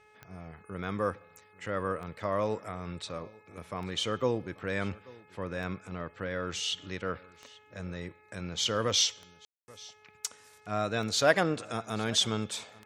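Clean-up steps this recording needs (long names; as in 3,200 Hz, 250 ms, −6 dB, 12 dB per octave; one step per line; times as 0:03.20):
click removal
hum removal 425 Hz, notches 6
ambience match 0:09.45–0:09.68
echo removal 836 ms −22.5 dB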